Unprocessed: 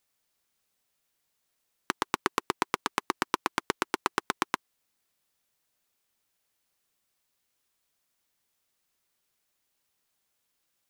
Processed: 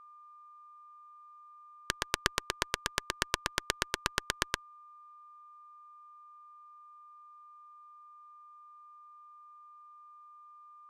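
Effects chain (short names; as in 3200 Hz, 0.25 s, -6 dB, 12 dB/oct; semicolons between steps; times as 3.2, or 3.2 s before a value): speaker cabinet 290–9200 Hz, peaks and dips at 620 Hz -10 dB, 1700 Hz +9 dB, 3400 Hz +3 dB; whine 1200 Hz -41 dBFS; added harmonics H 2 -9 dB, 3 -14 dB, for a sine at -3.5 dBFS; gain -3 dB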